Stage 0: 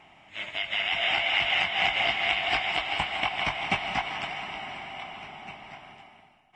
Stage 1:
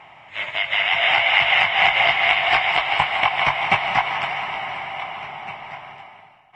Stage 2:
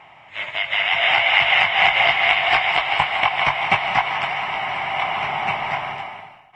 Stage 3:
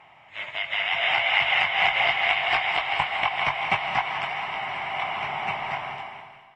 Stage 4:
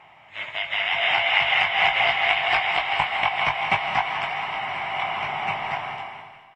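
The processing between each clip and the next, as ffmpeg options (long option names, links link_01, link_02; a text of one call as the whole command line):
ffmpeg -i in.wav -af "equalizer=frequency=125:width_type=o:width=1:gain=10,equalizer=frequency=250:width_type=o:width=1:gain=-4,equalizer=frequency=500:width_type=o:width=1:gain=7,equalizer=frequency=1000:width_type=o:width=1:gain=11,equalizer=frequency=2000:width_type=o:width=1:gain=8,equalizer=frequency=4000:width_type=o:width=1:gain=4,volume=-1dB" out.wav
ffmpeg -i in.wav -af "dynaudnorm=framelen=340:gausssize=5:maxgain=13dB,volume=-1dB" out.wav
ffmpeg -i in.wav -af "aecho=1:1:212|424|636|848|1060:0.178|0.0978|0.0538|0.0296|0.0163,volume=-6dB" out.wav
ffmpeg -i in.wav -filter_complex "[0:a]asplit=2[link_01][link_02];[link_02]adelay=19,volume=-11dB[link_03];[link_01][link_03]amix=inputs=2:normalize=0,volume=1.5dB" out.wav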